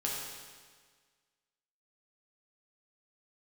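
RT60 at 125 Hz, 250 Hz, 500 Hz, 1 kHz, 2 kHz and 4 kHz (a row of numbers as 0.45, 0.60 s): 1.6, 1.6, 1.6, 1.6, 1.6, 1.5 s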